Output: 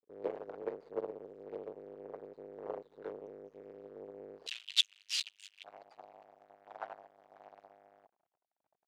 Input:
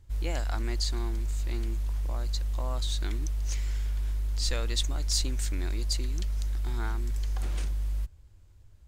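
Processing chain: fuzz box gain 50 dB, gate -49 dBFS; ladder band-pass 500 Hz, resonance 65%, from 4.46 s 3200 Hz, from 5.63 s 790 Hz; upward expander 2.5:1, over -45 dBFS; gain +3 dB

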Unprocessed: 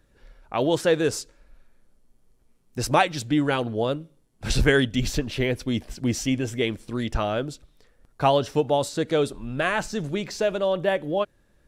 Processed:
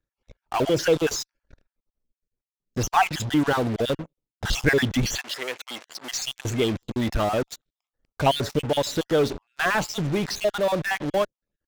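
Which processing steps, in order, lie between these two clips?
random spectral dropouts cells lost 37%; downsampling 16000 Hz; in parallel at -8.5 dB: fuzz box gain 41 dB, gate -45 dBFS; on the sum: power-law curve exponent 1.4; 5.18–6.12 HPF 790 Hz 12 dB/oct

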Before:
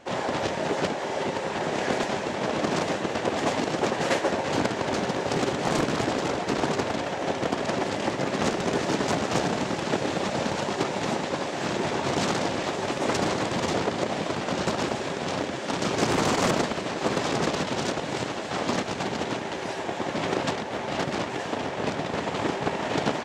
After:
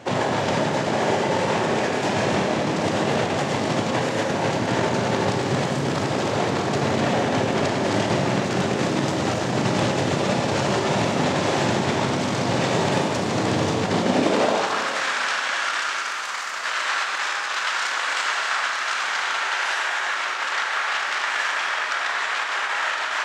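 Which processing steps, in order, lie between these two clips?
negative-ratio compressor -30 dBFS, ratio -1; high-pass sweep 110 Hz -> 1400 Hz, 13.86–14.78; Schroeder reverb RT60 2.2 s, combs from 28 ms, DRR 1.5 dB; gain +4.5 dB

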